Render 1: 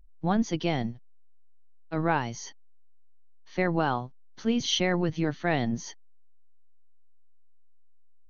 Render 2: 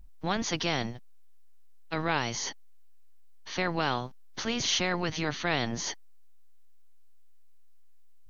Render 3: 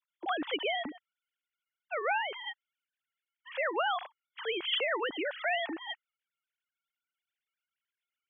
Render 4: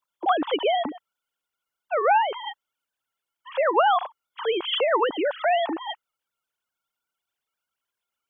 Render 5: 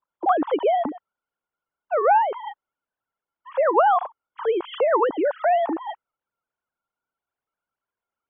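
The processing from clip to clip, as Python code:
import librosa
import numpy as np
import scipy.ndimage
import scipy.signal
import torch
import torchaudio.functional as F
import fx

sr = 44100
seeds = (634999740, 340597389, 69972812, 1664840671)

y1 = fx.spectral_comp(x, sr, ratio=2.0)
y1 = y1 * librosa.db_to_amplitude(-2.0)
y2 = fx.sine_speech(y1, sr)
y2 = y2 * librosa.db_to_amplitude(-3.0)
y3 = fx.graphic_eq(y2, sr, hz=(500, 1000, 2000), db=(3, 8, -9))
y3 = y3 * librosa.db_to_amplitude(7.5)
y4 = scipy.signal.sosfilt(scipy.signal.butter(2, 1300.0, 'lowpass', fs=sr, output='sos'), y3)
y4 = y4 * librosa.db_to_amplitude(3.0)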